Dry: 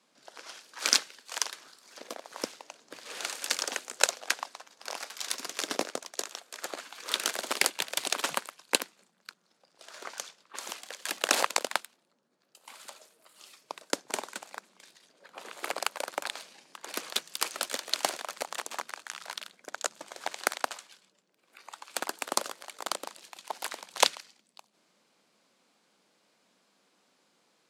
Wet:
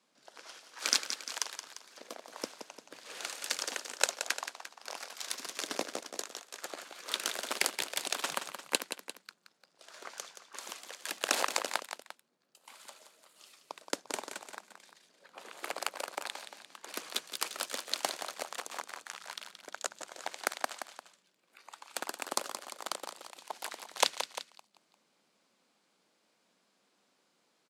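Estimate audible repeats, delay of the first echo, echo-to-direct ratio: 2, 174 ms, −8.5 dB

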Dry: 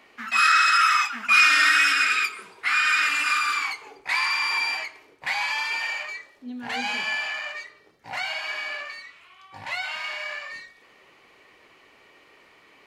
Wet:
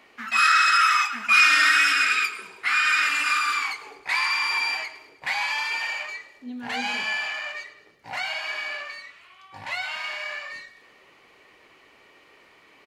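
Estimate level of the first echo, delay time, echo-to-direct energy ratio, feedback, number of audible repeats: −17.5 dB, 106 ms, −16.0 dB, 53%, 4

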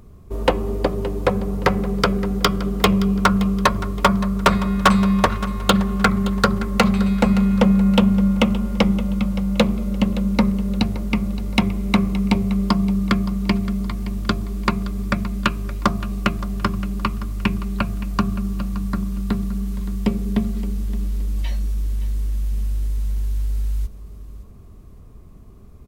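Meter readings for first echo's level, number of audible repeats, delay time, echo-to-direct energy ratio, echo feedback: −15.5 dB, 3, 570 ms, −15.0 dB, 33%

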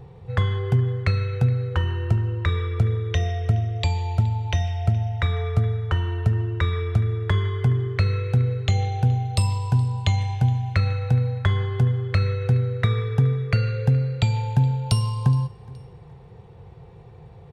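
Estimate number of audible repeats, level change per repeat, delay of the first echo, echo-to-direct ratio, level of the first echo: 2, −9.5 dB, 420 ms, −21.5 dB, −22.0 dB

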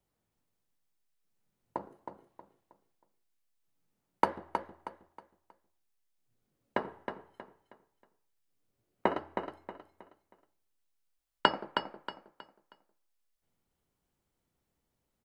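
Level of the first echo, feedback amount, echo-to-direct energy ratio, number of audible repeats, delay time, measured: −7.0 dB, 33%, −6.5 dB, 3, 317 ms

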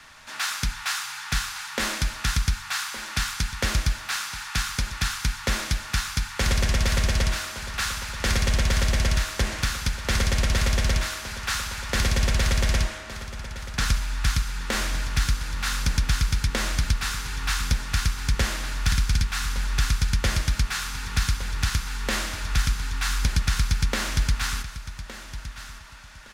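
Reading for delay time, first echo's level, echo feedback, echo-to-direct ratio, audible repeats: 1,164 ms, −13.5 dB, 25%, −13.0 dB, 2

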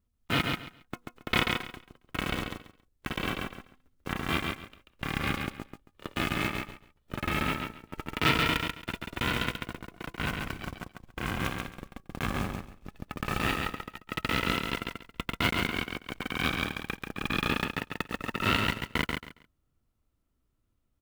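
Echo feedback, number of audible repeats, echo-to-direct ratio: 21%, 3, −4.0 dB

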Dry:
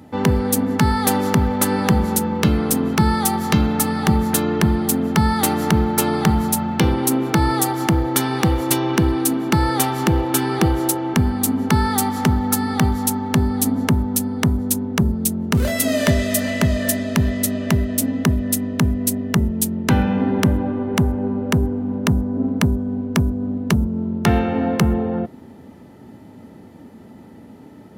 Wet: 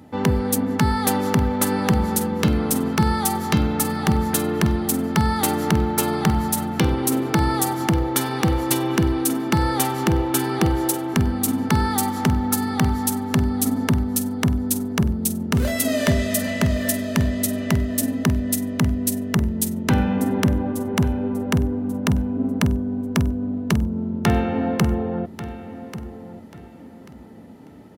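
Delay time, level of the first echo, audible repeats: 1,139 ms, −14.0 dB, 2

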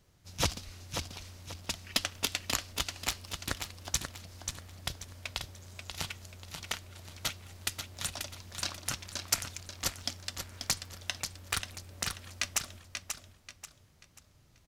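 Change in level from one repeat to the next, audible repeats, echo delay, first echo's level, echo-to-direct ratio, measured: −9.5 dB, 3, 536 ms, −6.5 dB, −6.0 dB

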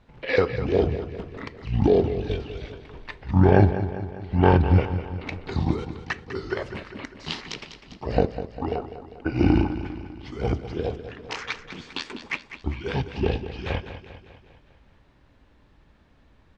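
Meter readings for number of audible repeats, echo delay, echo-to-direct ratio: 5, 200 ms, −10.0 dB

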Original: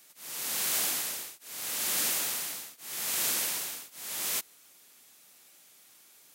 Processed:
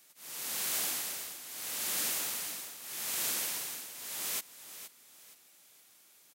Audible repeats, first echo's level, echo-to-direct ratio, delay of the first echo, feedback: 3, −12.0 dB, −11.5 dB, 470 ms, 32%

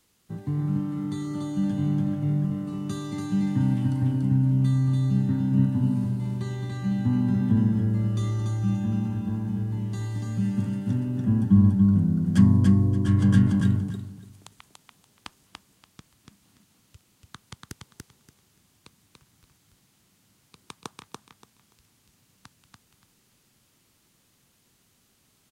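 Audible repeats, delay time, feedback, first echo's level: 3, 288 ms, 21%, −3.0 dB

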